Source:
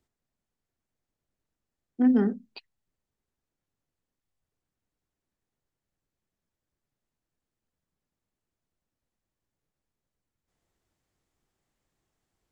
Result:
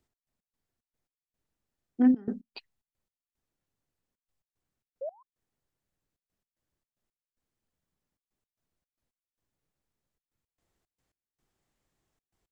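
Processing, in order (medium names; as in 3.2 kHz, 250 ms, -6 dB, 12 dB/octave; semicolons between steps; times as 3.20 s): painted sound rise, 5.01–5.23 s, 510–1100 Hz -34 dBFS; trance gate "x.x.xx.x..xxxxx" 112 bpm -24 dB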